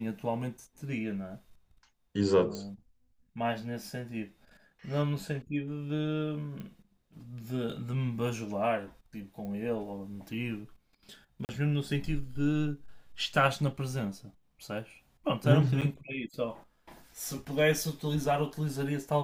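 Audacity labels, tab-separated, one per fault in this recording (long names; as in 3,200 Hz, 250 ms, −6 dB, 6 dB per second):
2.550000	2.550000	click −25 dBFS
6.600000	6.600000	click −30 dBFS
9.450000	9.450000	click −30 dBFS
11.450000	11.490000	drop-out 39 ms
15.810000	15.820000	drop-out 6.9 ms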